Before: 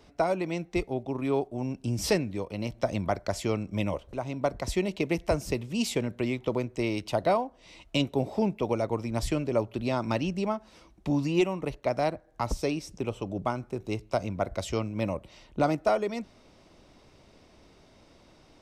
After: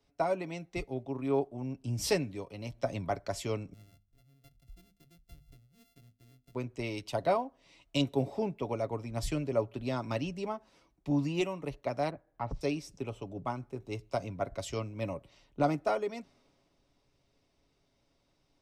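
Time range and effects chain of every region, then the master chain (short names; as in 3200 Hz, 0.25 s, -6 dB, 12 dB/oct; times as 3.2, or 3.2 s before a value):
3.73–6.55 sample sorter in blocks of 64 samples + passive tone stack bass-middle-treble 10-0-1 + notches 50/100/150/200/250 Hz
12.1–12.61 LPF 2500 Hz + core saturation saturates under 200 Hz
whole clip: comb 7.2 ms, depth 39%; three-band expander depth 40%; gain -6 dB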